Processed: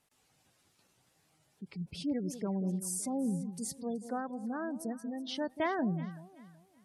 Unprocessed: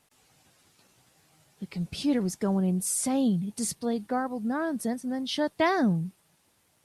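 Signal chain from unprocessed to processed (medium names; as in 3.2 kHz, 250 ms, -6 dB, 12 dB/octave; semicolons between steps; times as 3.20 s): spectral gate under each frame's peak -25 dB strong; echo whose repeats swap between lows and highs 188 ms, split 810 Hz, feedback 53%, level -11.5 dB; trim -8 dB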